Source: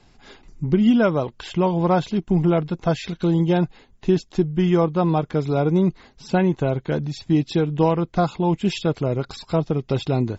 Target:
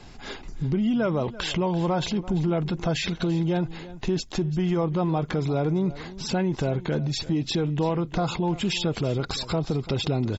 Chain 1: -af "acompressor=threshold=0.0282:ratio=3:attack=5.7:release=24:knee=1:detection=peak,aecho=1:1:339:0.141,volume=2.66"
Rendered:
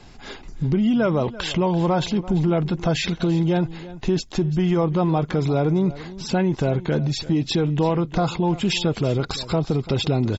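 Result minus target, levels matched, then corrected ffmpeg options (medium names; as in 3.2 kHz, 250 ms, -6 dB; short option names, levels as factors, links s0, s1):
compression: peak gain reduction -4.5 dB
-af "acompressor=threshold=0.0133:ratio=3:attack=5.7:release=24:knee=1:detection=peak,aecho=1:1:339:0.141,volume=2.66"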